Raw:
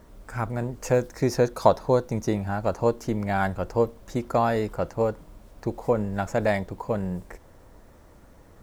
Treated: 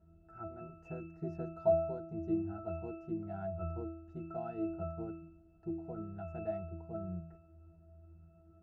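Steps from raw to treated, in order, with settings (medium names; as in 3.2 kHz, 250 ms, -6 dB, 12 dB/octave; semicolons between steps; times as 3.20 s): pitch-class resonator E, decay 0.78 s; trim +8 dB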